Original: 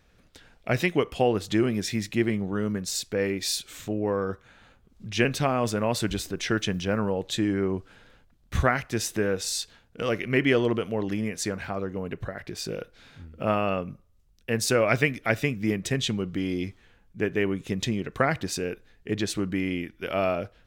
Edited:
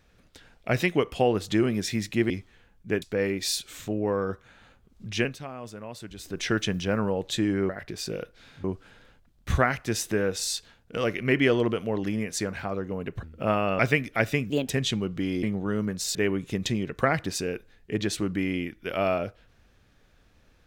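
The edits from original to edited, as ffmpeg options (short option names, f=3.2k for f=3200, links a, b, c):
-filter_complex "[0:a]asplit=13[a][b][c][d][e][f][g][h][i][j][k][l][m];[a]atrim=end=2.302[n];[b]atrim=start=16.598:end=17.322[o];[c]atrim=start=3.018:end=5.37,asetpts=PTS-STARTPTS,afade=t=out:st=2.112:d=0.24:silence=0.199526[p];[d]atrim=start=5.37:end=6.16,asetpts=PTS-STARTPTS,volume=-14dB[q];[e]atrim=start=6.16:end=7.692,asetpts=PTS-STARTPTS,afade=t=in:d=0.24:silence=0.199526[r];[f]atrim=start=12.278:end=13.232[s];[g]atrim=start=7.688:end=12.282[t];[h]atrim=start=13.228:end=13.792[u];[i]atrim=start=14.888:end=15.604[v];[j]atrim=start=15.6:end=15.87,asetpts=PTS-STARTPTS,asetrate=59535,aresample=44100[w];[k]atrim=start=15.866:end=16.602[x];[l]atrim=start=2.298:end=3.022[y];[m]atrim=start=17.318[z];[n][o]acrossfade=d=0.004:c1=hsin:c2=hsin[aa];[p][q][r]concat=n=3:v=0:a=1[ab];[aa][ab]acrossfade=d=0.004:c1=hsin:c2=hsin[ac];[ac][s]acrossfade=d=0.004:c1=hsin:c2=hsin[ad];[ad][t]acrossfade=d=0.004:c1=hsin:c2=hsin[ae];[ae][u]acrossfade=d=0.004:c1=hsin:c2=hsin[af];[af][v]acrossfade=d=0.004:c1=hsin:c2=hsin[ag];[ag][w]acrossfade=d=0.004:c1=hsin:c2=hsin[ah];[ah][x]acrossfade=d=0.004:c1=hsin:c2=hsin[ai];[ai][y]acrossfade=d=0.004:c1=hsin:c2=hsin[aj];[aj][z]acrossfade=d=0.004:c1=hsin:c2=hsin"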